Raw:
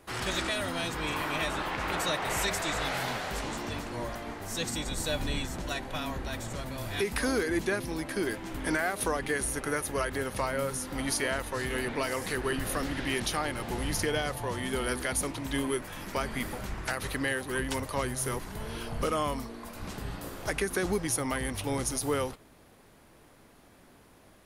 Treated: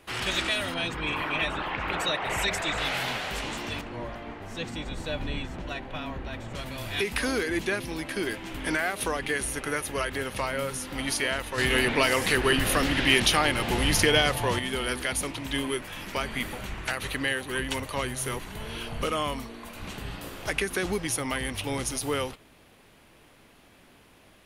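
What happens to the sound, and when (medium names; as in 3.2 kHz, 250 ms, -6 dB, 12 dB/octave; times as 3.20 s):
0.74–2.78 s: resonances exaggerated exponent 1.5
3.81–6.55 s: low-pass 1.4 kHz 6 dB/octave
11.58–14.59 s: gain +6.5 dB
16.21–20.05 s: band-stop 5.1 kHz
whole clip: peaking EQ 2.8 kHz +8 dB 1 oct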